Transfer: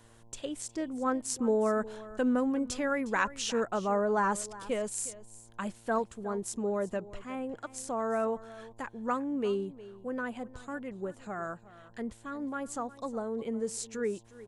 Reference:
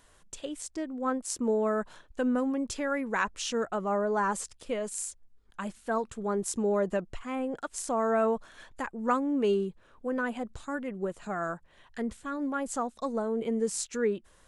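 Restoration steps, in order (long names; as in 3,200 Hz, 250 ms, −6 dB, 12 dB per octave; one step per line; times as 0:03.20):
hum removal 114.9 Hz, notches 9
echo removal 360 ms −17.5 dB
level correction +4.5 dB, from 0:06.04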